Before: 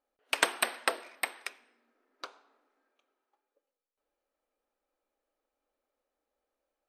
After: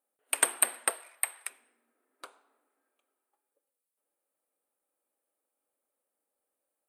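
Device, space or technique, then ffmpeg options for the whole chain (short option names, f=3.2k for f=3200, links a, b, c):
budget condenser microphone: -filter_complex "[0:a]highpass=110,highshelf=f=7.2k:t=q:w=3:g=9.5,asettb=1/sr,asplit=3[a][b][c];[a]atrim=end=0.904[d];[b]atrim=start=0.9:end=1.5,asetpts=PTS-STARTPTS,afade=t=in:d=0.004:c=qsin,afade=t=out:st=0.596:d=0.004:c=qsin,highpass=640[e];[c]atrim=start=1.496[f];[d][e]acrossfade=d=0.004:c1=hsin:c2=qsin[g];[g][f]acrossfade=d=0.004:c1=qsin:c2=hsin,volume=-3.5dB"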